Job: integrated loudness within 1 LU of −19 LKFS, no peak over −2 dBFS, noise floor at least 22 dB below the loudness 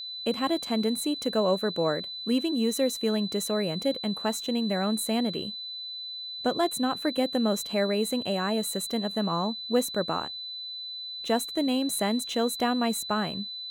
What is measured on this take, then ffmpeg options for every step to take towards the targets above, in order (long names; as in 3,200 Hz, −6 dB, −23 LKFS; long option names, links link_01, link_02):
interfering tone 4,000 Hz; level of the tone −35 dBFS; integrated loudness −28.0 LKFS; sample peak −13.0 dBFS; target loudness −19.0 LKFS
→ -af "bandreject=frequency=4000:width=30"
-af "volume=9dB"